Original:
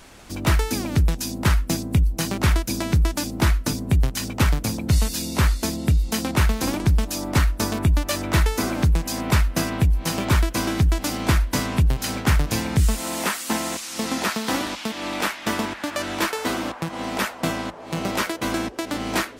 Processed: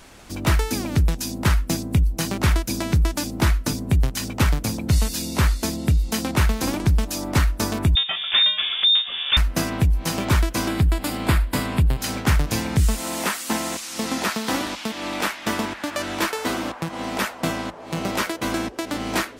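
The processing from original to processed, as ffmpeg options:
-filter_complex "[0:a]asettb=1/sr,asplit=3[a][b][c];[a]atrim=end=7.954[d];[b]atrim=start=7.95:end=9.37,asetpts=PTS-STARTPTS,afade=t=in:d=0.004:c=qsin,afade=t=out:st=1.416:d=0.004:c=qsin,lowpass=f=3.1k:t=q:w=0.5098,lowpass=f=3.1k:t=q:w=0.6013,lowpass=f=3.1k:t=q:w=0.9,lowpass=f=3.1k:t=q:w=2.563,afreqshift=-3700[e];[c]atrim=start=9.366[f];[d][e]acrossfade=d=0.004:c1=hsin:c2=qsin[g];[g][f]acrossfade=d=0.004:c1=qsin:c2=hsin,asettb=1/sr,asplit=3[h][i][j];[h]atrim=end=10.684[k];[i]atrim=start=10.68:end=12.01,asetpts=PTS-STARTPTS,afade=t=in:d=0.004:c=qsin,afade=t=out:st=1.326:d=0.004:c=qsin,equalizer=f=6k:w=4.4:g=-13.5[l];[j]atrim=start=12.006[m];[k][l]acrossfade=d=0.004:c1=hsin:c2=qsin[n];[n][m]acrossfade=d=0.004:c1=qsin:c2=hsin"

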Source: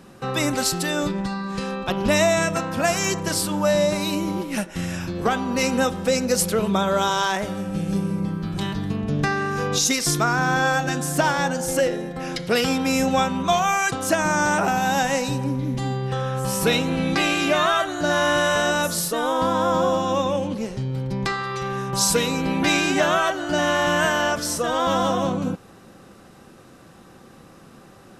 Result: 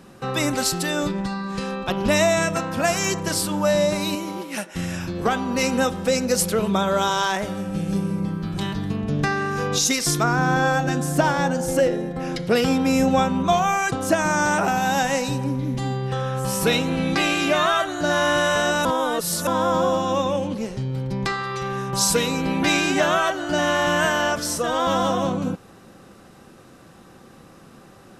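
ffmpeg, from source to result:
-filter_complex "[0:a]asettb=1/sr,asplit=3[a][b][c];[a]atrim=end=4.154[d];[b]atrim=start=4.15:end=4.75,asetpts=PTS-STARTPTS,afade=t=in:d=0.004:c=qsin,afade=t=out:st=0.596:d=0.004:c=qsin,highpass=f=420:p=1[e];[c]atrim=start=4.746[f];[d][e]acrossfade=d=0.004:c1=hsin:c2=qsin[g];[g][f]acrossfade=d=0.004:c1=qsin:c2=hsin,asettb=1/sr,asplit=3[h][i][j];[h]atrim=end=10.234[k];[i]atrim=start=10.23:end=14.16,asetpts=PTS-STARTPTS,afade=t=in:d=0.004:c=qsin,afade=t=out:st=3.926:d=0.004:c=qsin,tiltshelf=f=970:g=3.5[l];[j]atrim=start=14.156[m];[k][l]acrossfade=d=0.004:c1=hsin:c2=qsin[n];[n][m]acrossfade=d=0.004:c1=qsin:c2=hsin,asplit=3[o][p][q];[o]atrim=end=18.852[r];[p]atrim=start=18.848:end=19.472,asetpts=PTS-STARTPTS,areverse[s];[q]atrim=start=19.468[t];[r][s]acrossfade=d=0.004:c1=hsin:c2=hsin[u];[u][t]acrossfade=d=0.004:c1=hsin:c2=hsin"

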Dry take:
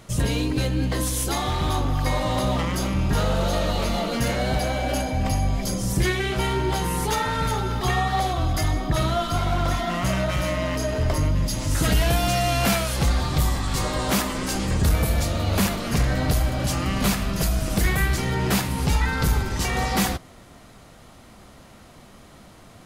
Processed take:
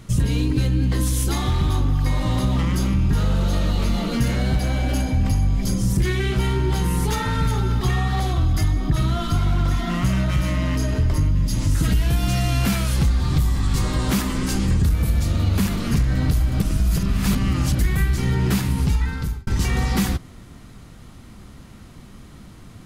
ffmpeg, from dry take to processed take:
-filter_complex "[0:a]asettb=1/sr,asplit=3[a][b][c];[a]atrim=end=4.484[d];[b]atrim=start=4.48:end=8.46,asetpts=PTS-STARTPTS,afade=t=in:d=0.004:c=qsin,afade=t=out:st=3.976:d=0.004:c=qsin,volume=17dB,asoftclip=hard,volume=-17dB[e];[c]atrim=start=8.456[f];[d][e]acrossfade=d=0.004:c1=hsin:c2=qsin[g];[g][f]acrossfade=d=0.004:c1=qsin:c2=hsin,asplit=4[h][i][j][k];[h]atrim=end=16.602[l];[i]atrim=start=16.598:end=17.792,asetpts=PTS-STARTPTS,areverse[m];[j]atrim=start=17.788:end=19.47,asetpts=PTS-STARTPTS,afade=t=out:st=0.932:d=0.75[n];[k]atrim=start=19.47,asetpts=PTS-STARTPTS,afade=t=in:d=0.004:c=hsin[o];[l][m]acrossfade=d=0.004:c1=hsin:c2=hsin[p];[n][o]concat=n=2:v=0:a=1[q];[p][q]acrossfade=d=0.004:c1=hsin:c2=hsin,lowshelf=f=330:g=9,acompressor=threshold=-15dB:ratio=6,equalizer=f=630:t=o:w=0.88:g=-8"

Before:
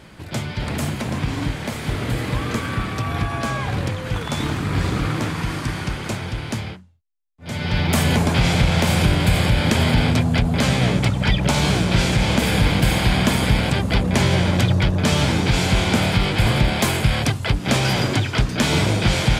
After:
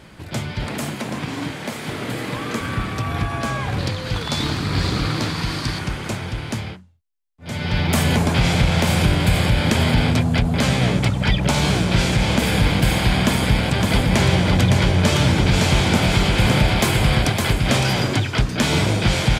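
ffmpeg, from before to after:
-filter_complex "[0:a]asettb=1/sr,asplit=3[a][b][c];[a]atrim=end=0.674[d];[b]atrim=start=0.67:end=2.61,asetpts=PTS-STARTPTS,afade=t=in:d=0.004:c=qsin,afade=t=out:st=1.936:d=0.004:c=qsin,highpass=170[e];[c]atrim=start=2.606[f];[d][e]acrossfade=d=0.004:c1=hsin:c2=qsin[g];[g][f]acrossfade=d=0.004:c1=qsin:c2=hsin,asettb=1/sr,asplit=3[h][i][j];[h]atrim=end=3.794[k];[i]atrim=start=3.79:end=5.79,asetpts=PTS-STARTPTS,afade=t=in:d=0.004:c=qsin,afade=t=out:st=1.996:d=0.004:c=qsin,equalizer=f=4.4k:w=2.1:g=11[l];[j]atrim=start=5.786[m];[k][l]acrossfade=d=0.004:c1=hsin:c2=qsin[n];[n][m]acrossfade=d=0.004:c1=qsin:c2=hsin,asplit=3[o][p][q];[o]afade=t=out:st=13.78:d=0.02[r];[p]aecho=1:1:561:0.668,afade=t=in:st=13.78:d=0.02,afade=t=out:st=17.82:d=0.02[s];[q]afade=t=in:st=17.82:d=0.02[t];[r][s][t]amix=inputs=3:normalize=0"

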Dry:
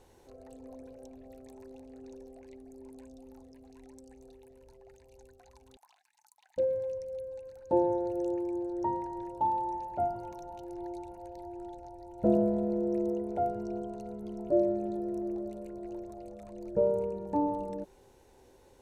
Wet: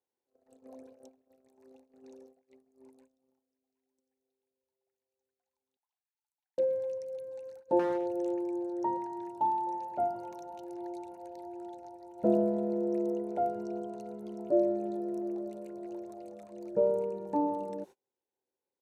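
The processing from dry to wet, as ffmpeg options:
-filter_complex "[0:a]asplit=2[a][b];[b]afade=t=in:st=6.65:d=0.01,afade=t=out:st=7.14:d=0.01,aecho=0:1:510|1020|1530:0.149624|0.0598494|0.0239398[c];[a][c]amix=inputs=2:normalize=0,asettb=1/sr,asplit=3[d][e][f];[d]atrim=end=7.794[g];[e]atrim=start=7.79:end=8.34,asetpts=PTS-STARTPTS,afade=t=in:d=0.004:c=qsin,afade=t=out:st=0.546:d=0.004:c=qsin,asoftclip=type=hard:threshold=-26dB[h];[f]atrim=start=8.336[i];[g][h]acrossfade=d=0.004:c1=hsin:c2=qsin[j];[j][i]acrossfade=d=0.004:c1=qsin:c2=hsin,asettb=1/sr,asplit=3[k][l][m];[k]atrim=end=8.974[n];[l]atrim=start=8.97:end=9.67,asetpts=PTS-STARTPTS,afade=t=in:d=0.004:c=qsin,afade=t=out:st=0.696:d=0.004:c=qsin,bandreject=f=520:w=6.2[o];[m]atrim=start=9.666[p];[n][o]acrossfade=d=0.004:c1=hsin:c2=qsin[q];[q][p]acrossfade=d=0.004:c1=qsin:c2=hsin,highpass=200,agate=range=-32dB:threshold=-48dB:ratio=16:detection=peak"

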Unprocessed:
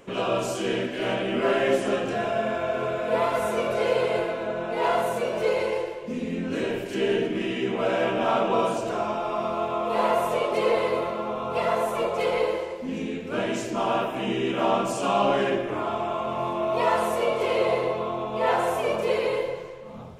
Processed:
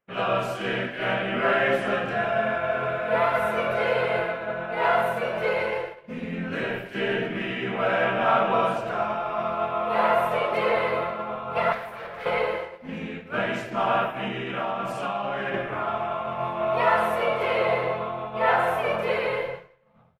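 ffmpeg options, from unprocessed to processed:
-filter_complex "[0:a]asettb=1/sr,asplit=3[a][b][c];[a]atrim=end=11.724[d];[b]atrim=start=11.72:end=12.26,asetpts=PTS-STARTPTS,afade=t=in:d=0.004:c=qsin,afade=t=out:st=0.536:d=0.004:c=qsin,asoftclip=type=hard:threshold=-30dB[e];[c]atrim=start=12.256[f];[d][e]acrossfade=d=0.004:c1=hsin:c2=qsin[g];[g][f]acrossfade=d=0.004:c1=qsin:c2=hsin,asettb=1/sr,asplit=3[h][i][j];[h]atrim=end=14.274[k];[i]atrim=start=14.27:end=15.54,asetpts=PTS-STARTPTS,afade=t=in:d=0.004:c=qsin,afade=t=out:st=1.266:d=0.004:c=qsin,acompressor=threshold=-24dB:ratio=6:attack=3.2:release=140:knee=1:detection=peak[l];[j]atrim=start=15.536[m];[k][l]acrossfade=d=0.004:c1=hsin:c2=qsin[n];[n][m]acrossfade=d=0.004:c1=qsin:c2=hsin,equalizer=f=1k:t=o:w=0.58:g=-13.5,agate=range=-33dB:threshold=-28dB:ratio=3:detection=peak,firequalizer=gain_entry='entry(100,0);entry(150,4);entry(300,-7);entry(960,14);entry(2800,1);entry(6900,-13);entry(12000,-3)':delay=0.05:min_phase=1"

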